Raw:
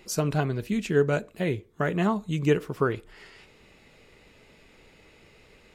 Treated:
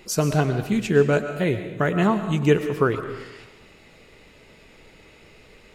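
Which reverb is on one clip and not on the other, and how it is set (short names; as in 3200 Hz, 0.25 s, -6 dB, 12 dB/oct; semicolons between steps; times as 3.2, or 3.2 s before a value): digital reverb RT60 1.1 s, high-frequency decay 0.9×, pre-delay 80 ms, DRR 9 dB; gain +4.5 dB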